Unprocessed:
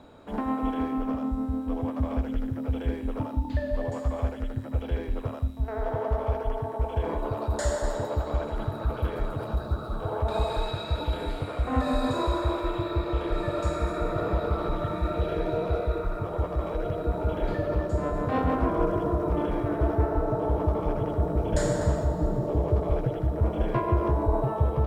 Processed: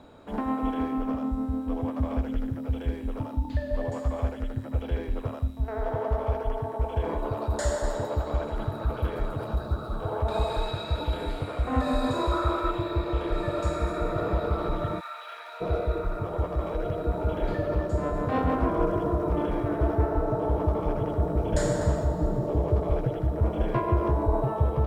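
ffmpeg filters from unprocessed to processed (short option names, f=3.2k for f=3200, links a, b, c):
-filter_complex "[0:a]asettb=1/sr,asplit=3[a][b][c];[a]atrim=end=2.544[d];[b]atrim=start=2.54:end=3.71,asetpts=PTS-STARTPTS,afade=t=in:d=0.004:c=qsin,afade=t=out:st=1.166:d=0.004:c=qsin,acrossover=split=150|3000[e][f][g];[f]acompressor=threshold=-37dB:ratio=1.5:attack=3.2:release=140:knee=2.83:detection=peak[h];[e][h][g]amix=inputs=3:normalize=0[i];[c]atrim=start=3.706[j];[d][i]acrossfade=d=0.004:c1=hsin:c2=qsin[k];[k][j]acrossfade=d=0.004:c1=qsin:c2=hsin,asettb=1/sr,asplit=3[l][m][n];[l]atrim=end=12.314[o];[m]atrim=start=12.31:end=12.71,asetpts=PTS-STARTPTS,afade=t=in:d=0.004:c=qsin,afade=t=out:st=0.396:d=0.004:c=qsin,equalizer=f=1.3k:t=o:w=0.23:g=12[p];[n]atrim=start=12.706[q];[o][p]acrossfade=d=0.004:c1=hsin:c2=qsin[r];[r][q]acrossfade=d=0.004:c1=qsin:c2=hsin,asplit=3[s][t][u];[s]afade=t=out:st=14.99:d=0.02[v];[t]highpass=f=1k:w=0.5412,highpass=f=1k:w=1.3066,afade=t=in:st=14.99:d=0.02,afade=t=out:st=15.6:d=0.02[w];[u]afade=t=in:st=15.6:d=0.02[x];[v][w][x]amix=inputs=3:normalize=0"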